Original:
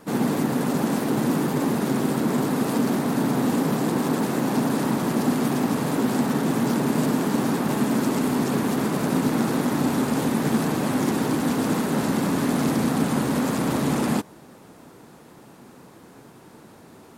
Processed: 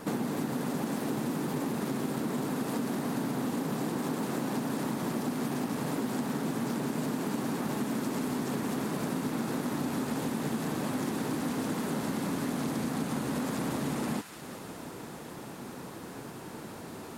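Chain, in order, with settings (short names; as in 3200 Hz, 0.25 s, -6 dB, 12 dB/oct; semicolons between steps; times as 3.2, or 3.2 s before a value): compressor, threshold -35 dBFS, peak gain reduction 17 dB; on a send: thin delay 0.178 s, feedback 75%, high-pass 1500 Hz, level -8 dB; on the sum: gain +4.5 dB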